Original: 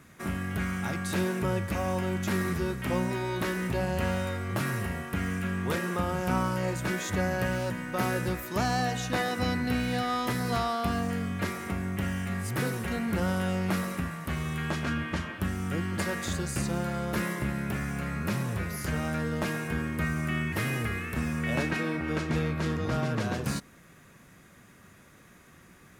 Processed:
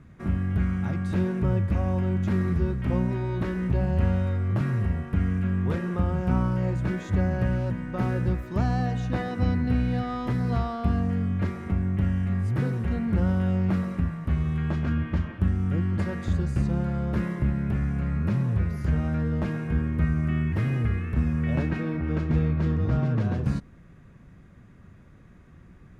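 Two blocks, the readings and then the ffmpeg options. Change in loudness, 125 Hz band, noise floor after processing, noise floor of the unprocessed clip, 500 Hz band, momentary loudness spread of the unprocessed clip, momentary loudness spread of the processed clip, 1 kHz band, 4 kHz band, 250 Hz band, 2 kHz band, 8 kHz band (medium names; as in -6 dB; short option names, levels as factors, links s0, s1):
+4.0 dB, +7.5 dB, -50 dBFS, -55 dBFS, -1.0 dB, 4 LU, 4 LU, -4.0 dB, no reading, +4.0 dB, -6.0 dB, under -15 dB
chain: -af "aemphasis=mode=reproduction:type=riaa,volume=0.631"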